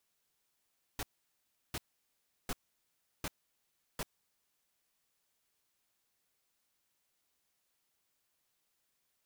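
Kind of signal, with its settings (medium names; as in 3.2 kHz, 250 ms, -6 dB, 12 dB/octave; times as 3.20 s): noise bursts pink, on 0.04 s, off 0.71 s, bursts 5, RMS -37.5 dBFS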